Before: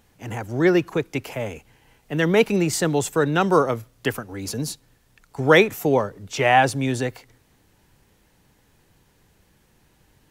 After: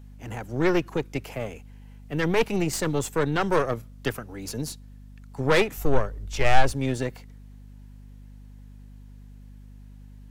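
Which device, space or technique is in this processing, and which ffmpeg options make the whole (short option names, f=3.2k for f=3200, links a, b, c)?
valve amplifier with mains hum: -filter_complex "[0:a]aeval=exprs='(tanh(5.62*val(0)+0.8)-tanh(0.8))/5.62':c=same,aeval=exprs='val(0)+0.00631*(sin(2*PI*50*n/s)+sin(2*PI*2*50*n/s)/2+sin(2*PI*3*50*n/s)/3+sin(2*PI*4*50*n/s)/4+sin(2*PI*5*50*n/s)/5)':c=same,asplit=3[a][b][c];[a]afade=t=out:st=5.76:d=0.02[d];[b]asubboost=boost=6.5:cutoff=65,afade=t=in:st=5.76:d=0.02,afade=t=out:st=6.72:d=0.02[e];[c]afade=t=in:st=6.72:d=0.02[f];[d][e][f]amix=inputs=3:normalize=0"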